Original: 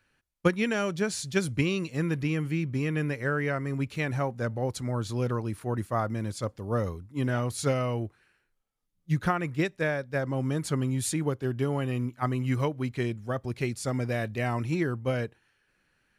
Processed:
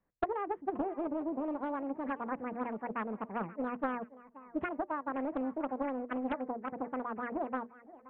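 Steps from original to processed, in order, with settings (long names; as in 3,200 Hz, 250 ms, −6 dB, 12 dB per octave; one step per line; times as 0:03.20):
Butterworth low-pass 1,000 Hz 48 dB per octave
mains-hum notches 60/120/180/240/300 Hz
wrong playback speed 7.5 ips tape played at 15 ips
feedback echo with a high-pass in the loop 527 ms, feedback 34%, high-pass 150 Hz, level −18 dB
highs frequency-modulated by the lows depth 0.46 ms
level −6.5 dB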